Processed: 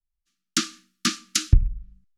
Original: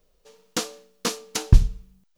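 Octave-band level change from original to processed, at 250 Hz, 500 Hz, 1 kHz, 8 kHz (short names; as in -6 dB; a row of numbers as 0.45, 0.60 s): +1.0, -11.5, -0.5, +4.0 dB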